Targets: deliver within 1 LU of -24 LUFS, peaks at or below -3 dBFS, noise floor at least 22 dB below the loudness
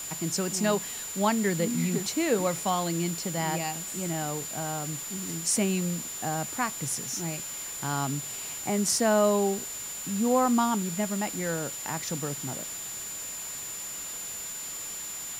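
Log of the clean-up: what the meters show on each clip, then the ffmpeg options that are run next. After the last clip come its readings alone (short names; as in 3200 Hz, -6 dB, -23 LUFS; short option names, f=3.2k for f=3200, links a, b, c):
steady tone 7100 Hz; tone level -36 dBFS; noise floor -37 dBFS; noise floor target -51 dBFS; loudness -29.0 LUFS; peak -13.0 dBFS; loudness target -24.0 LUFS
-> -af "bandreject=f=7.1k:w=30"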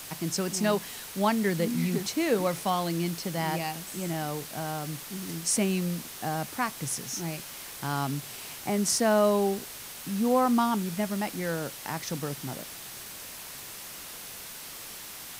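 steady tone none; noise floor -42 dBFS; noise floor target -52 dBFS
-> -af "afftdn=nr=10:nf=-42"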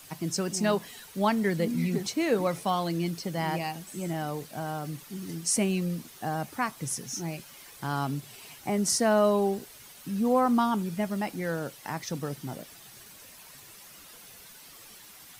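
noise floor -50 dBFS; noise floor target -52 dBFS
-> -af "afftdn=nr=6:nf=-50"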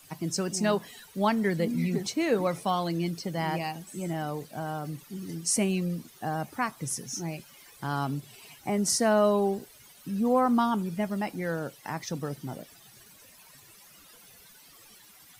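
noise floor -54 dBFS; loudness -29.5 LUFS; peak -13.5 dBFS; loudness target -24.0 LUFS
-> -af "volume=5.5dB"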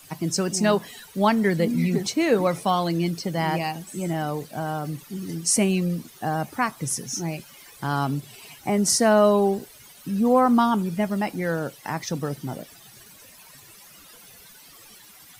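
loudness -24.0 LUFS; peak -8.0 dBFS; noise floor -49 dBFS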